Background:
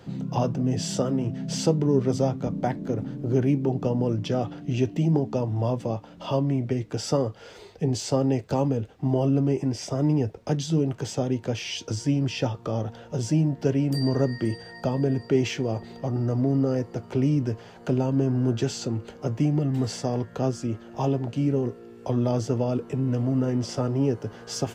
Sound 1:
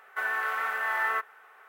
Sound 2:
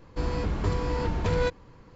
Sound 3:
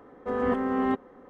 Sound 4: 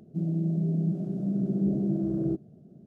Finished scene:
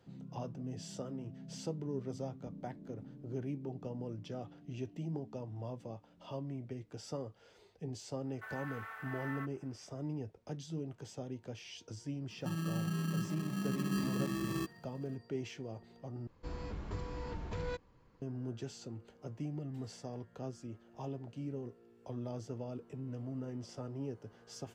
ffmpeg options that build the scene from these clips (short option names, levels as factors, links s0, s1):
-filter_complex "[0:a]volume=0.133[s0];[4:a]acrusher=samples=30:mix=1:aa=0.000001[s1];[s0]asplit=2[s2][s3];[s2]atrim=end=16.274[s4];[2:a]atrim=end=1.95,asetpts=PTS-STARTPTS,volume=0.2[s5];[s3]atrim=start=18.216[s6];[1:a]atrim=end=1.68,asetpts=PTS-STARTPTS,volume=0.141,afade=t=in:d=0.004:c=hsin,afade=t=out:st=1.676:d=0.004:c=hsin,adelay=8250[s7];[s1]atrim=end=2.86,asetpts=PTS-STARTPTS,volume=0.355,afade=t=in:d=0.004:c=hsin,afade=t=out:st=2.856:d=0.004:c=hsin,adelay=12300[s8];[s4][s5]acrossfade=d=0.004:c1=hsin:c2=hsin[s9];[s9][s6]acrossfade=d=0.004:c1=hsin:c2=hsin[s10];[s10][s7][s8]amix=inputs=3:normalize=0"